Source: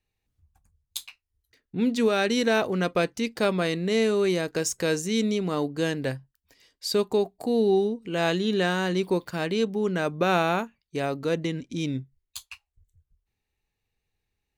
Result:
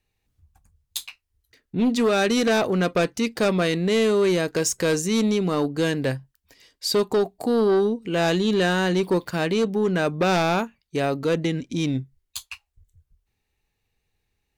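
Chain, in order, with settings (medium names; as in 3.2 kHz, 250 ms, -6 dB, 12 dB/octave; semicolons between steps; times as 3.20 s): sine folder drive 6 dB, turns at -11 dBFS; trim -4.5 dB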